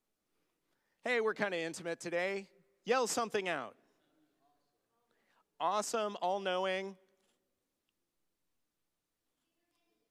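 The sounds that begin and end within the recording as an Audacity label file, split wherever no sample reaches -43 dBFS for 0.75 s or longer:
1.060000	3.690000	sound
5.600000	6.910000	sound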